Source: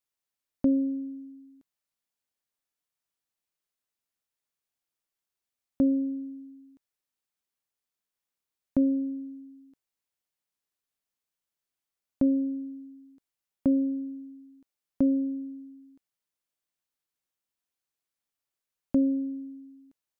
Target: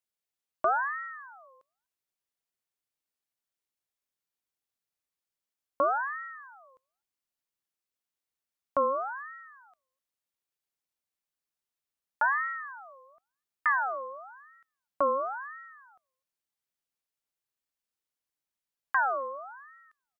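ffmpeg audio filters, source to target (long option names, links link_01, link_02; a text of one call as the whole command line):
ffmpeg -i in.wav -filter_complex "[0:a]asplit=2[link_01][link_02];[link_02]adelay=250,highpass=300,lowpass=3400,asoftclip=type=hard:threshold=-25dB,volume=-30dB[link_03];[link_01][link_03]amix=inputs=2:normalize=0,aeval=exprs='val(0)*sin(2*PI*1200*n/s+1200*0.35/0.96*sin(2*PI*0.96*n/s))':channel_layout=same" out.wav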